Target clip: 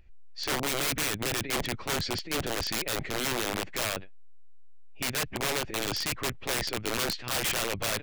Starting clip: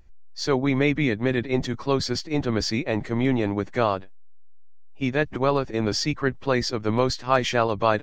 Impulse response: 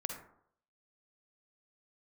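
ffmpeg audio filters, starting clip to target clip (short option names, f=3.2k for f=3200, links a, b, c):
-af "equalizer=f=250:t=o:w=0.67:g=-3,equalizer=f=1k:t=o:w=0.67:g=-5,equalizer=f=2.5k:t=o:w=0.67:g=8,equalizer=f=6.3k:t=o:w=0.67:g=-8,aresample=22050,aresample=44100,aeval=exprs='(mod(10*val(0)+1,2)-1)/10':c=same,volume=-2.5dB"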